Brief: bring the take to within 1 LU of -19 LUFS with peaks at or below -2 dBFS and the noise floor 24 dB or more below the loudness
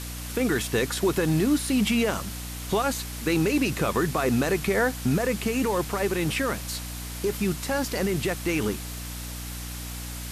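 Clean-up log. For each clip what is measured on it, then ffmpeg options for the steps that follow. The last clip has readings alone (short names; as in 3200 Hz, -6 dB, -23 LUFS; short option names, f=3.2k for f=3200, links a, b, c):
hum 60 Hz; harmonics up to 300 Hz; hum level -35 dBFS; noise floor -35 dBFS; noise floor target -51 dBFS; loudness -26.5 LUFS; peak -13.5 dBFS; loudness target -19.0 LUFS
-> -af "bandreject=f=60:t=h:w=6,bandreject=f=120:t=h:w=6,bandreject=f=180:t=h:w=6,bandreject=f=240:t=h:w=6,bandreject=f=300:t=h:w=6"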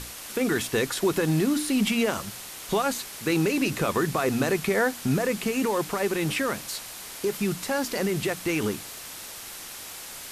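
hum none; noise floor -40 dBFS; noise floor target -50 dBFS
-> -af "afftdn=nr=10:nf=-40"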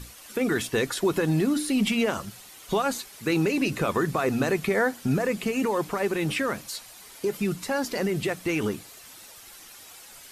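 noise floor -48 dBFS; noise floor target -51 dBFS
-> -af "afftdn=nr=6:nf=-48"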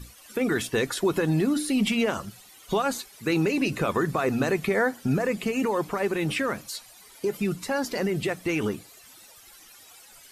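noise floor -51 dBFS; loudness -26.5 LUFS; peak -13.5 dBFS; loudness target -19.0 LUFS
-> -af "volume=7.5dB"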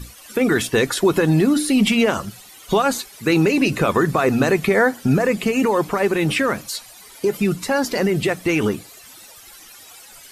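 loudness -19.0 LUFS; peak -6.0 dBFS; noise floor -44 dBFS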